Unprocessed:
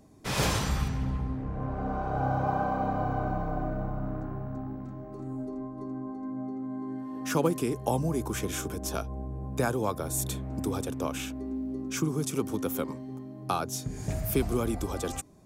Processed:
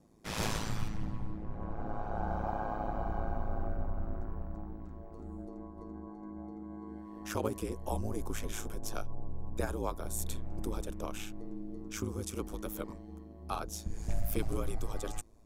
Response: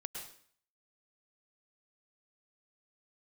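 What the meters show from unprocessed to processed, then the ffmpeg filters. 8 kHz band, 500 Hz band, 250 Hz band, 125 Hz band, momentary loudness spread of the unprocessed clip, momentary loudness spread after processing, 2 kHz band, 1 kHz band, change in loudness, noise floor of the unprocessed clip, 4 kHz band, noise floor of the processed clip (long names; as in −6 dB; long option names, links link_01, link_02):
−7.5 dB, −8.0 dB, −9.0 dB, −7.5 dB, 9 LU, 10 LU, −8.0 dB, −8.0 dB, −7.5 dB, −42 dBFS, −7.5 dB, −49 dBFS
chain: -af "aeval=exprs='val(0)*sin(2*PI*54*n/s)':channel_layout=same,asubboost=boost=6:cutoff=57,volume=-4.5dB"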